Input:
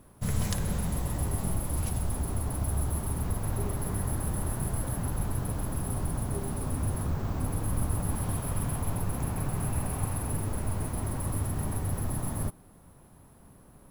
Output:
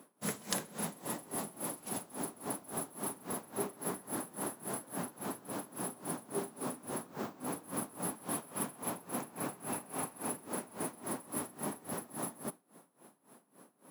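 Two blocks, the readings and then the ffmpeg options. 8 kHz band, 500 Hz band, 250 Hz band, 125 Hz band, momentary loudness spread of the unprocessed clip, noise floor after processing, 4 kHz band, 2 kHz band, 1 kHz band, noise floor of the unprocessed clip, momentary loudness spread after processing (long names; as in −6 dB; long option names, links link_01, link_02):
−2.5 dB, −2.0 dB, −6.0 dB, −21.0 dB, 2 LU, −69 dBFS, −1.5 dB, −2.5 dB, −2.5 dB, −55 dBFS, 4 LU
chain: -af "highpass=frequency=220:width=0.5412,highpass=frequency=220:width=1.3066,aeval=exprs='val(0)*pow(10,-21*(0.5-0.5*cos(2*PI*3.6*n/s))/20)':channel_layout=same,volume=3dB"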